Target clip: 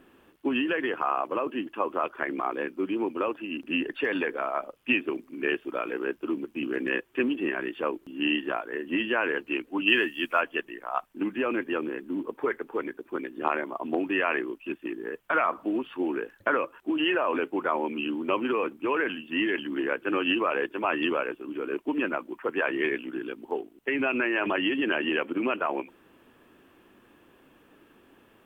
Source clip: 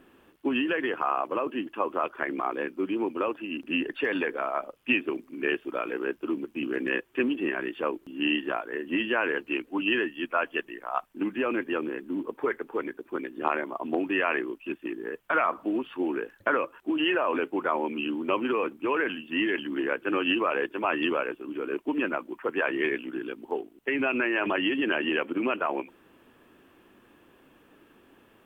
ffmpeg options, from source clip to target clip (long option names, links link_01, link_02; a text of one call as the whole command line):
ffmpeg -i in.wav -filter_complex "[0:a]asplit=3[link_01][link_02][link_03];[link_01]afade=type=out:start_time=9.86:duration=0.02[link_04];[link_02]highshelf=frequency=2600:gain=11.5,afade=type=in:start_time=9.86:duration=0.02,afade=type=out:start_time=10.4:duration=0.02[link_05];[link_03]afade=type=in:start_time=10.4:duration=0.02[link_06];[link_04][link_05][link_06]amix=inputs=3:normalize=0" out.wav